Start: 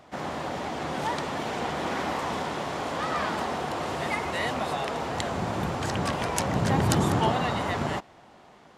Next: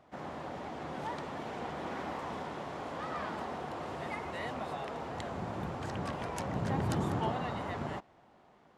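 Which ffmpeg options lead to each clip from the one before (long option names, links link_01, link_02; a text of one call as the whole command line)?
ffmpeg -i in.wav -af "highshelf=frequency=2800:gain=-8.5,volume=-8.5dB" out.wav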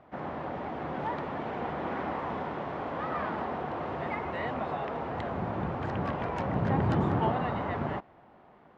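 ffmpeg -i in.wav -af "lowpass=2400,volume=5.5dB" out.wav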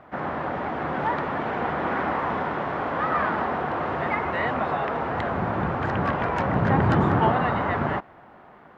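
ffmpeg -i in.wav -af "equalizer=frequency=1500:width_type=o:width=1.1:gain=6,volume=6dB" out.wav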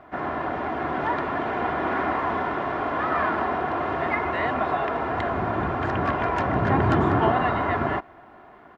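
ffmpeg -i in.wav -af "aecho=1:1:2.9:0.42" out.wav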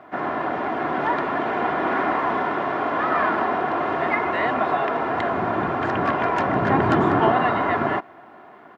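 ffmpeg -i in.wav -af "highpass=150,volume=3dB" out.wav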